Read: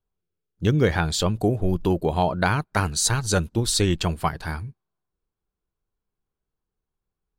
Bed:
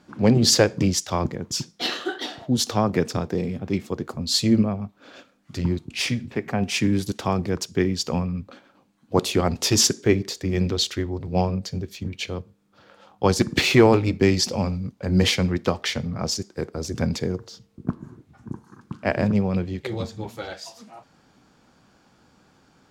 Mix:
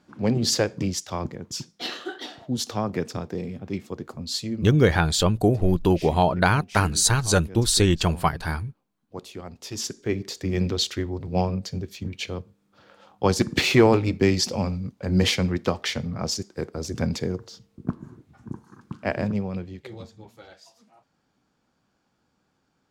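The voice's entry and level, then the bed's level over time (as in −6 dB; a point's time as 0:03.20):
4.00 s, +2.0 dB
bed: 0:04.28 −5.5 dB
0:04.74 −17 dB
0:09.61 −17 dB
0:10.40 −1.5 dB
0:18.91 −1.5 dB
0:20.26 −13.5 dB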